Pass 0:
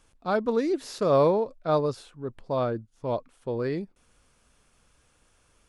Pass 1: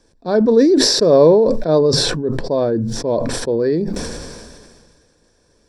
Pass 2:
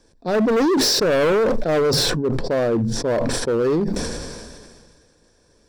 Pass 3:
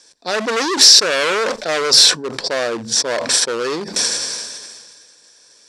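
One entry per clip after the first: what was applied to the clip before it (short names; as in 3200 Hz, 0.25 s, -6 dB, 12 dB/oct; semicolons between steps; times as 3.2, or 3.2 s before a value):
reverb RT60 0.20 s, pre-delay 3 ms, DRR 17 dB; sustainer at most 30 dB/s; gain -2 dB
overloaded stage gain 15.5 dB
weighting filter ITU-R 468; in parallel at 0 dB: limiter -12 dBFS, peak gain reduction 10.5 dB; on the sum: gain -2 dB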